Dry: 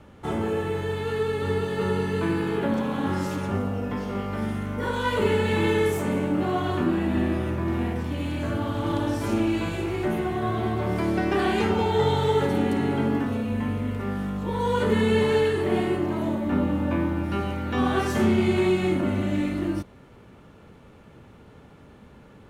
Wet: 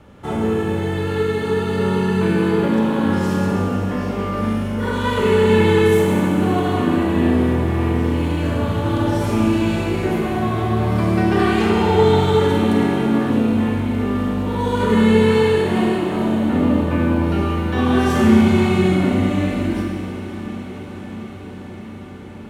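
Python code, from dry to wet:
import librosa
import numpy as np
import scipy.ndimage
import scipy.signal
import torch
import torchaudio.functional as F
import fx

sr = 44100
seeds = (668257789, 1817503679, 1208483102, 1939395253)

y = fx.echo_diffused(x, sr, ms=580, feedback_pct=77, wet_db=-15.0)
y = fx.rev_schroeder(y, sr, rt60_s=2.2, comb_ms=32, drr_db=-0.5)
y = F.gain(torch.from_numpy(y), 2.5).numpy()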